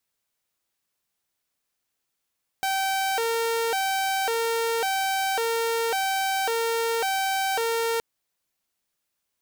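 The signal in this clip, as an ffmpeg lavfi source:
ffmpeg -f lavfi -i "aevalsrc='0.0944*(2*mod((616*t+157/0.91*(0.5-abs(mod(0.91*t,1)-0.5))),1)-1)':duration=5.37:sample_rate=44100" out.wav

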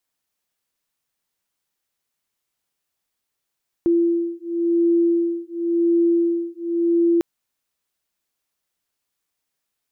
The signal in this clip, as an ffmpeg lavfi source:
ffmpeg -f lavfi -i "aevalsrc='0.106*(sin(2*PI*339*t)+sin(2*PI*339.93*t))':duration=3.35:sample_rate=44100" out.wav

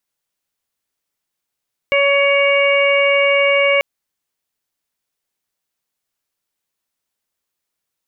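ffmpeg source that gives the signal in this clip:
ffmpeg -f lavfi -i "aevalsrc='0.2*sin(2*PI*561*t)+0.0668*sin(2*PI*1122*t)+0.0355*sin(2*PI*1683*t)+0.178*sin(2*PI*2244*t)+0.0794*sin(2*PI*2805*t)':duration=1.89:sample_rate=44100" out.wav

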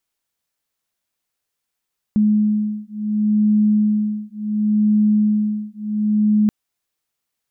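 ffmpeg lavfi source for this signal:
ffmpeg -f lavfi -i "aevalsrc='0.133*(sin(2*PI*211*t)+sin(2*PI*211.7*t))':duration=4.33:sample_rate=44100" out.wav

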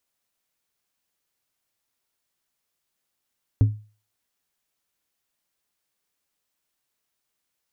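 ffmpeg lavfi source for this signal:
ffmpeg -f lavfi -i "aevalsrc='0.316*pow(10,-3*t/0.36)*sin(2*PI*106*t)+0.0841*pow(10,-3*t/0.19)*sin(2*PI*265*t)+0.0224*pow(10,-3*t/0.136)*sin(2*PI*424*t)+0.00596*pow(10,-3*t/0.117)*sin(2*PI*530*t)+0.00158*pow(10,-3*t/0.097)*sin(2*PI*689*t)':duration=0.89:sample_rate=44100" out.wav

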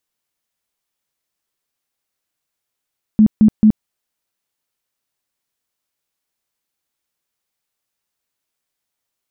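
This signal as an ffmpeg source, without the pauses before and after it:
ffmpeg -f lavfi -i "aevalsrc='0.531*sin(2*PI*215*mod(t,0.22))*lt(mod(t,0.22),16/215)':duration=0.66:sample_rate=44100" out.wav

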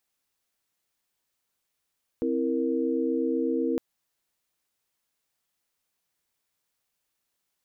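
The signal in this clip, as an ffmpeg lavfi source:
ffmpeg -f lavfi -i "aevalsrc='0.0398*(sin(2*PI*261.63*t)+sin(2*PI*329.63*t)+sin(2*PI*466.16*t))':duration=1.56:sample_rate=44100" out.wav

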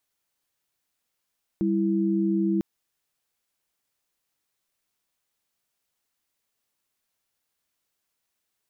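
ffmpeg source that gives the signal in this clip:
ffmpeg -f lavfi -i "aevalsrc='0.0668*(sin(2*PI*196*t)+sin(2*PI*329.63*t))':duration=1:sample_rate=44100" out.wav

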